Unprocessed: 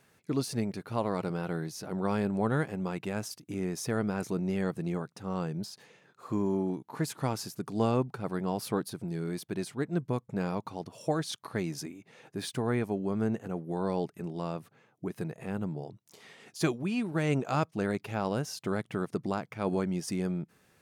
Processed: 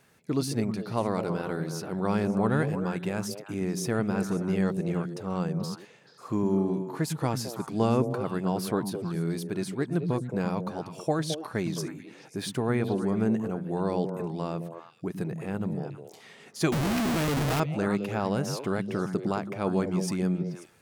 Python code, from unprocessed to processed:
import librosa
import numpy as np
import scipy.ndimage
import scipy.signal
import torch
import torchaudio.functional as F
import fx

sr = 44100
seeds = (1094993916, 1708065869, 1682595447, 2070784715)

y = fx.echo_stepped(x, sr, ms=108, hz=170.0, octaves=1.4, feedback_pct=70, wet_db=-2.5)
y = fx.schmitt(y, sr, flips_db=-41.0, at=(16.72, 17.6))
y = y * librosa.db_to_amplitude(2.5)